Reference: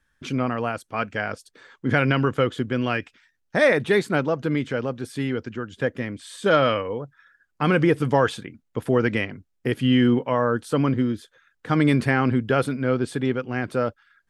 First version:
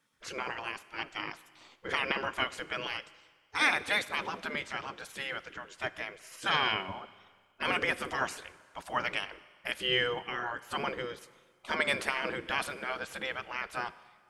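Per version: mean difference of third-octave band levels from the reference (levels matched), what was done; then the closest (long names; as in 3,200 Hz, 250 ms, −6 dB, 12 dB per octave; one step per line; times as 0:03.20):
10.5 dB: gate on every frequency bin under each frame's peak −15 dB weak
four-comb reverb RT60 1.7 s, combs from 32 ms, DRR 17 dB
level +1 dB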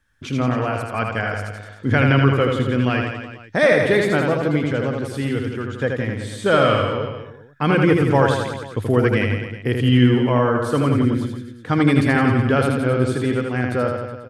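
6.0 dB: parametric band 100 Hz +12 dB 0.36 octaves
reverse bouncing-ball delay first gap 80 ms, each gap 1.1×, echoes 5
level +1.5 dB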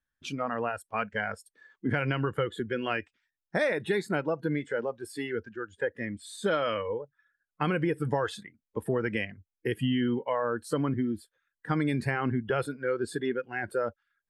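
4.0 dB: noise reduction from a noise print of the clip's start 16 dB
downward compressor 4 to 1, threshold −23 dBFS, peak gain reduction 8.5 dB
level −2 dB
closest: third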